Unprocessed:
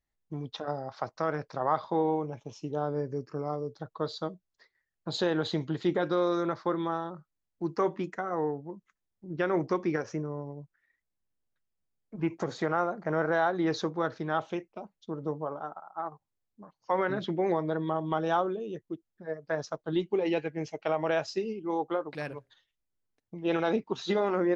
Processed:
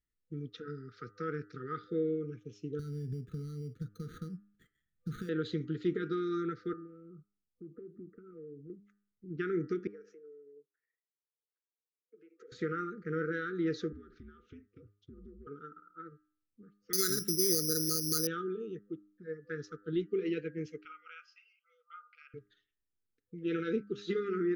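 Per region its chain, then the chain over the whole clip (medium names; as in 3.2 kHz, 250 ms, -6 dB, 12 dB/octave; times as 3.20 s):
2.79–5.29 s: compression 4:1, threshold -38 dBFS + sample-rate reducer 5.2 kHz + resonant low shelf 260 Hz +9.5 dB, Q 1.5
6.73–8.70 s: inverse Chebyshev low-pass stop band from 3.3 kHz, stop band 60 dB + compression 4:1, threshold -42 dBFS
9.87–12.52 s: compression 12:1, threshold -37 dBFS + ladder high-pass 410 Hz, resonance 60%
13.92–15.47 s: treble shelf 3.7 kHz -7.5 dB + compression 12:1, threshold -43 dBFS + frequency shift -92 Hz
16.93–18.27 s: treble shelf 3.3 kHz -6 dB + careless resampling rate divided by 8×, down filtered, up zero stuff
20.85–22.34 s: brick-wall FIR high-pass 500 Hz + distance through air 250 m + static phaser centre 2.6 kHz, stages 8
whole clip: FFT band-reject 500–1200 Hz; treble shelf 2.7 kHz -9 dB; de-hum 101.9 Hz, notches 19; trim -3.5 dB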